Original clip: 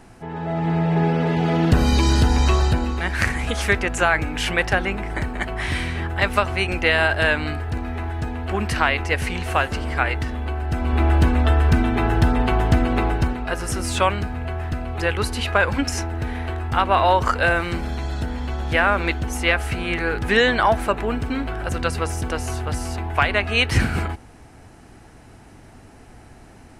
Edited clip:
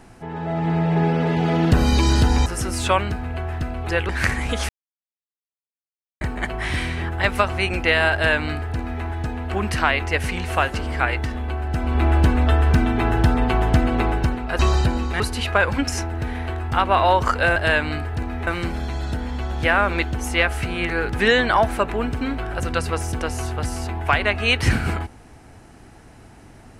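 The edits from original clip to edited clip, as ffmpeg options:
-filter_complex "[0:a]asplit=9[a][b][c][d][e][f][g][h][i];[a]atrim=end=2.462[j];[b]atrim=start=13.568:end=15.202[k];[c]atrim=start=3.068:end=3.67,asetpts=PTS-STARTPTS,afade=t=out:st=0.598:d=0.004:c=hsin[l];[d]atrim=start=3.67:end=5.19,asetpts=PTS-STARTPTS,volume=0[m];[e]atrim=start=5.19:end=13.572,asetpts=PTS-STARTPTS,afade=t=in:d=0.004:c=hsin[n];[f]atrim=start=2.458:end=3.072[o];[g]atrim=start=15.198:end=17.562[p];[h]atrim=start=7.108:end=8.022[q];[i]atrim=start=17.558[r];[j][k]acrossfade=d=0.004:c1=hsin:c2=hsin[s];[l][m][n]concat=n=3:v=0:a=1[t];[s][t]acrossfade=d=0.004:c1=hsin:c2=hsin[u];[u][o]acrossfade=d=0.004:c1=hsin:c2=hsin[v];[v][p]acrossfade=d=0.004:c1=hsin:c2=hsin[w];[w][q]acrossfade=d=0.004:c1=hsin:c2=hsin[x];[x][r]acrossfade=d=0.004:c1=hsin:c2=hsin"

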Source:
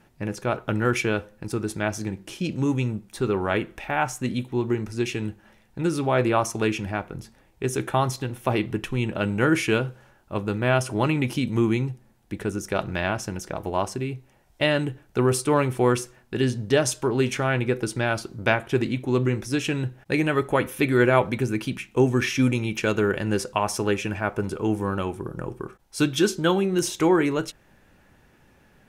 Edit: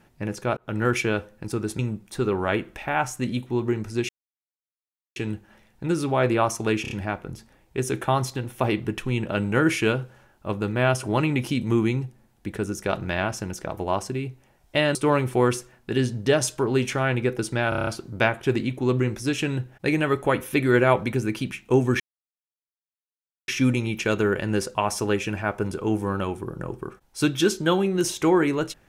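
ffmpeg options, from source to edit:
-filter_complex "[0:a]asplit=15[a][b][c][d][e][f][g][h][i][j][k][l][m][n][o];[a]atrim=end=0.57,asetpts=PTS-STARTPTS,afade=t=out:st=0.566:d=0.004:c=hsin[p];[b]atrim=start=0.57:end=1.792,asetpts=PTS-STARTPTS,afade=t=in:d=0.25[q];[c]atrim=start=2.808:end=5.11,asetpts=PTS-STARTPTS,afade=t=out:st=2.298:d=0.004:c=hsin,apad=pad_dur=1.07[r];[d]atrim=start=5.11:end=6.802,asetpts=PTS-STARTPTS,afade=t=in:d=0.004:c=hsin[s];[e]atrim=start=6.768:end=6.802[t];[f]atrim=start=6.768:end=6.802[u];[g]atrim=start=6.768:end=14.812[v];[h]atrim=start=15.388:end=18.162[w];[i]atrim=start=18.128:end=18.162[x];[j]atrim=start=18.128:end=18.162[y];[k]atrim=start=18.128:end=18.162[z];[l]atrim=start=18.128:end=18.162[aa];[m]atrim=start=18.128:end=18.162[ab];[n]atrim=start=18.128:end=22.26,asetpts=PTS-STARTPTS,afade=t=out:st=4.128:d=0.004:c=hsin,apad=pad_dur=1.48[ac];[o]atrim=start=22.26,asetpts=PTS-STARTPTS,afade=t=in:d=0.004:c=hsin[ad];[p][q]concat=n=2:v=0:a=1[ae];[r][s]concat=n=2:v=0:a=1[af];[ae][af]acrossfade=d=0.004:c1=hsin:c2=hsin[ag];[ag][t]acrossfade=d=0.004:c1=hsin:c2=hsin[ah];[ah][u]acrossfade=d=0.004:c1=hsin:c2=hsin[ai];[ai][v]acrossfade=d=0.004:c1=hsin:c2=hsin[aj];[aj][w]acrossfade=d=0.004:c1=hsin:c2=hsin[ak];[ak][x]acrossfade=d=0.004:c1=hsin:c2=hsin[al];[al][y]acrossfade=d=0.004:c1=hsin:c2=hsin[am];[am][z]acrossfade=d=0.004:c1=hsin:c2=hsin[an];[an][aa]acrossfade=d=0.004:c1=hsin:c2=hsin[ao];[ao][ab]acrossfade=d=0.004:c1=hsin:c2=hsin[ap];[ac][ad]concat=n=2:v=0:a=1[aq];[ap][aq]acrossfade=d=0.004:c1=hsin:c2=hsin"

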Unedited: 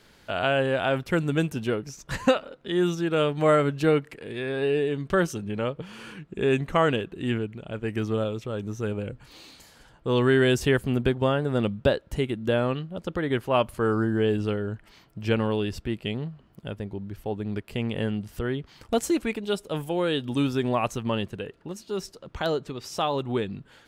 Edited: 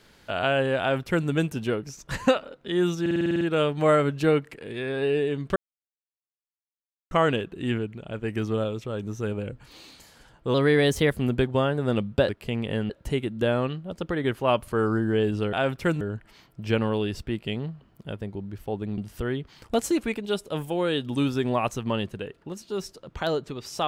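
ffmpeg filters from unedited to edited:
-filter_complex "[0:a]asplit=18[a][b][c][d][e][f][g][h][i][j][k][l][m][n][o][p][q][r];[a]atrim=end=3.062[s];[b]atrim=start=3.008:end=3.062[t];[c]atrim=start=3.008:end=3.062[u];[d]atrim=start=3.008:end=3.062[v];[e]atrim=start=3.008:end=3.062[w];[f]atrim=start=3.008:end=3.062[x];[g]atrim=start=3.008:end=3.062[y];[h]atrim=start=3.008:end=3.062[z];[i]atrim=start=3.008:end=5.16,asetpts=PTS-STARTPTS,afade=t=out:st=2.148:d=0.004:c=hsin[aa];[j]atrim=start=5.16:end=6.71,asetpts=PTS-STARTPTS,volume=0[ab];[k]atrim=start=6.71:end=10.144,asetpts=PTS-STARTPTS,afade=t=in:d=0.004:c=hsin[ac];[l]atrim=start=10.14:end=10.81,asetpts=PTS-STARTPTS,asetrate=49392,aresample=44100,atrim=end_sample=26381,asetpts=PTS-STARTPTS[ad];[m]atrim=start=10.806:end=11.962[ae];[n]atrim=start=17.558:end=18.172[af];[o]atrim=start=11.958:end=14.592[ag];[p]atrim=start=0.798:end=1.282[ah];[q]atrim=start=14.588:end=17.562[ai];[r]atrim=start=18.168[aj];[s][t]acrossfade=d=0.004:c1=hsin:c2=hsin[ak];[ak][u]acrossfade=d=0.004:c1=hsin:c2=hsin[al];[al][v]acrossfade=d=0.004:c1=hsin:c2=hsin[am];[am][w]acrossfade=d=0.004:c1=hsin:c2=hsin[an];[an][x]acrossfade=d=0.004:c1=hsin:c2=hsin[ao];[ao][y]acrossfade=d=0.004:c1=hsin:c2=hsin[ap];[ap][z]acrossfade=d=0.004:c1=hsin:c2=hsin[aq];[aa][ab][ac]concat=n=3:v=0:a=1[ar];[aq][ar]acrossfade=d=0.004:c1=hsin:c2=hsin[as];[as][ad]acrossfade=d=0.004:c1=hsin:c2=hsin[at];[at][ae]acrossfade=d=0.004:c1=hsin:c2=hsin[au];[au][af]acrossfade=d=0.004:c1=hsin:c2=hsin[av];[av][ag]acrossfade=d=0.004:c1=hsin:c2=hsin[aw];[aw][ah]acrossfade=d=0.004:c1=hsin:c2=hsin[ax];[ax][ai]acrossfade=d=0.004:c1=hsin:c2=hsin[ay];[ay][aj]acrossfade=d=0.004:c1=hsin:c2=hsin"

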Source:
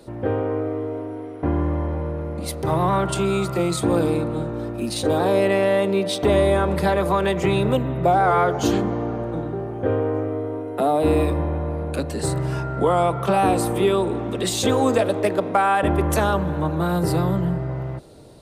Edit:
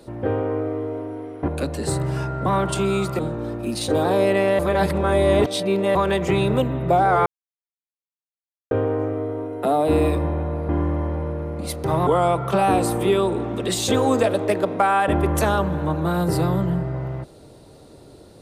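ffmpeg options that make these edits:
-filter_complex "[0:a]asplit=10[a][b][c][d][e][f][g][h][i][j];[a]atrim=end=1.482[k];[b]atrim=start=11.838:end=12.822[l];[c]atrim=start=2.858:end=3.592[m];[d]atrim=start=4.338:end=5.742[n];[e]atrim=start=5.738:end=7.102,asetpts=PTS-STARTPTS,areverse[o];[f]atrim=start=7.098:end=8.41,asetpts=PTS-STARTPTS,afade=t=out:st=1.308:d=0.004:c=hsin[p];[g]atrim=start=8.41:end=9.86,asetpts=PTS-STARTPTS,volume=0[q];[h]atrim=start=9.86:end=11.842,asetpts=PTS-STARTPTS,afade=t=in:d=0.004:c=hsin[r];[i]atrim=start=1.478:end=2.862[s];[j]atrim=start=12.818[t];[k][l]acrossfade=d=0.004:c1=hsin:c2=hsin[u];[u][m]acrossfade=d=0.004:c1=hsin:c2=hsin[v];[v][n]acrossfade=d=0.004:c1=hsin:c2=hsin[w];[w][o]acrossfade=d=0.004:c1=hsin:c2=hsin[x];[p][q][r]concat=n=3:v=0:a=1[y];[x][y]acrossfade=d=0.004:c1=hsin:c2=hsin[z];[z][s]acrossfade=d=0.004:c1=hsin:c2=hsin[aa];[aa][t]acrossfade=d=0.004:c1=hsin:c2=hsin"

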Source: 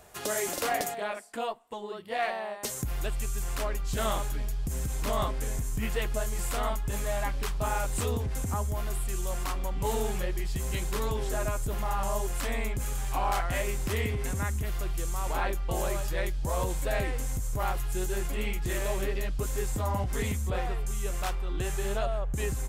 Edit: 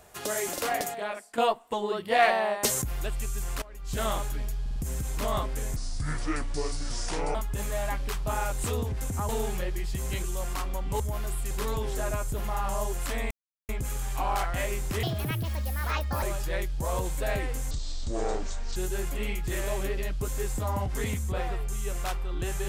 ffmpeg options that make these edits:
-filter_complex "[0:a]asplit=18[a][b][c][d][e][f][g][h][i][j][k][l][m][n][o][p][q][r];[a]atrim=end=1.382[s];[b]atrim=start=1.378:end=2.822,asetpts=PTS-STARTPTS,volume=8.5dB[t];[c]atrim=start=2.818:end=3.62,asetpts=PTS-STARTPTS,afade=t=out:st=0.798:d=0.004:c=hsin:silence=0.112202[u];[d]atrim=start=3.62:end=4.662,asetpts=PTS-STARTPTS,afade=t=in:d=0.33:c=qua:silence=0.112202[v];[e]atrim=start=4.608:end=4.662[w];[f]atrim=start=4.608:end=4.662[x];[g]atrim=start=4.608:end=5.614[y];[h]atrim=start=5.61:end=6.69,asetpts=PTS-STARTPTS,asetrate=29988,aresample=44100,atrim=end_sample=70041,asetpts=PTS-STARTPTS[z];[i]atrim=start=6.686:end=8.632[aa];[j]atrim=start=9.898:end=10.852[ab];[k]atrim=start=9.138:end=9.902[ac];[l]atrim=start=8.628:end=9.142[ad];[m]atrim=start=10.848:end=12.65,asetpts=PTS-STARTPTS,afade=t=out:st=1.798:d=0.004:c=hsin,apad=pad_dur=0.38[ae];[n]atrim=start=12.65:end=13.994,asetpts=PTS-STARTPTS,afade=t=in:d=0.004:c=hsin[af];[o]atrim=start=13.99:end=15.87,asetpts=PTS-STARTPTS,asetrate=69237,aresample=44100[ag];[p]atrim=start=15.866:end=17.354[ah];[q]atrim=start=17.35:end=17.94,asetpts=PTS-STARTPTS,asetrate=24696,aresample=44100,atrim=end_sample=46462,asetpts=PTS-STARTPTS[ai];[r]atrim=start=17.936[aj];[s][t]acrossfade=d=0.004:c1=hsin:c2=hsin[ak];[u][v]concat=n=2:v=0:a=1[al];[ak][al]acrossfade=d=0.004:c1=hsin:c2=hsin[am];[am][w]acrossfade=d=0.004:c1=hsin:c2=hsin[an];[an][x]acrossfade=d=0.004:c1=hsin:c2=hsin[ao];[ao][y]acrossfade=d=0.004:c1=hsin:c2=hsin[ap];[ap][z]acrossfade=d=0.004:c1=hsin:c2=hsin[aq];[aq][aa]acrossfade=d=0.004:c1=hsin:c2=hsin[ar];[ar][ab]acrossfade=d=0.004:c1=hsin:c2=hsin[as];[as][ac]acrossfade=d=0.004:c1=hsin:c2=hsin[at];[at][ad]acrossfade=d=0.004:c1=hsin:c2=hsin[au];[ae][af]concat=n=2:v=0:a=1[av];[au][av]acrossfade=d=0.004:c1=hsin:c2=hsin[aw];[aw][ag]acrossfade=d=0.004:c1=hsin:c2=hsin[ax];[ax][ah]acrossfade=d=0.004:c1=hsin:c2=hsin[ay];[ay][ai]acrossfade=d=0.004:c1=hsin:c2=hsin[az];[az][aj]acrossfade=d=0.004:c1=hsin:c2=hsin"

